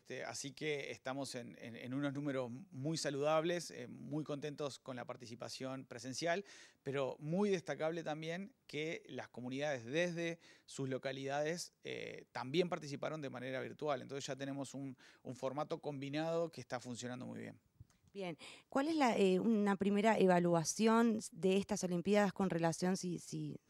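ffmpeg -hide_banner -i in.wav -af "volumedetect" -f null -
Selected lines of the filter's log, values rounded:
mean_volume: -39.1 dB
max_volume: -19.3 dB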